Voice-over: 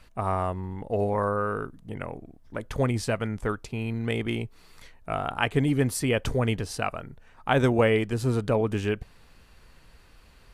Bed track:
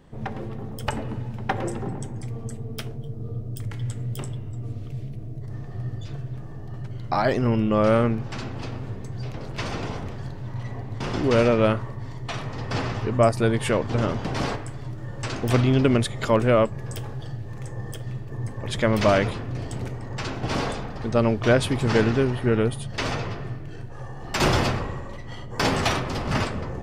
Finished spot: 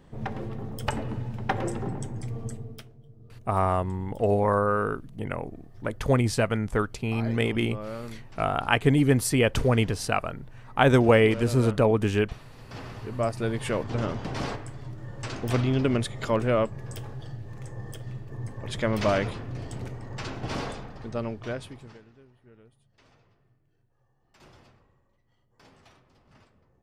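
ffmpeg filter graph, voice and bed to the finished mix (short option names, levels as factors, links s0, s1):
-filter_complex "[0:a]adelay=3300,volume=1.41[s0];[1:a]volume=3.55,afade=t=out:st=2.48:d=0.39:silence=0.158489,afade=t=in:st=12.57:d=1.24:silence=0.237137,afade=t=out:st=20.38:d=1.62:silence=0.0354813[s1];[s0][s1]amix=inputs=2:normalize=0"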